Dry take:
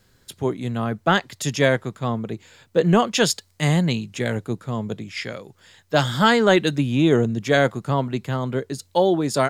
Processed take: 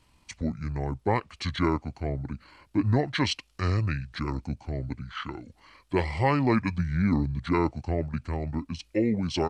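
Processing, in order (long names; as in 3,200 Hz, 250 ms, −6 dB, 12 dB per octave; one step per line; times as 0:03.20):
in parallel at −2 dB: downward compressor 5 to 1, threshold −31 dBFS, peak gain reduction 17.5 dB
on the sum: pitch shifter −8.5 semitones
level −8 dB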